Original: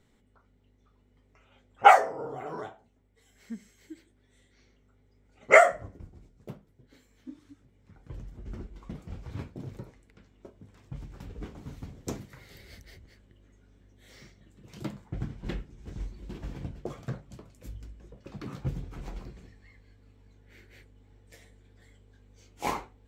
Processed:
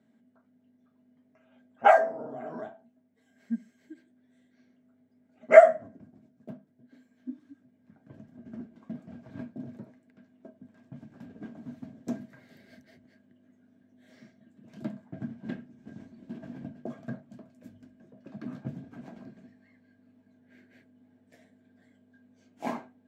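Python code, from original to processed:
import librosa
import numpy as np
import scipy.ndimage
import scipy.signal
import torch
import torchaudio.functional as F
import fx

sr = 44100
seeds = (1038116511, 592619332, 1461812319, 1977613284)

y = scipy.signal.sosfilt(scipy.signal.butter(4, 120.0, 'highpass', fs=sr, output='sos'), x)
y = fx.high_shelf(y, sr, hz=3900.0, db=-7.5)
y = fx.small_body(y, sr, hz=(240.0, 640.0, 1600.0), ring_ms=70, db=17)
y = y * 10.0 ** (-7.0 / 20.0)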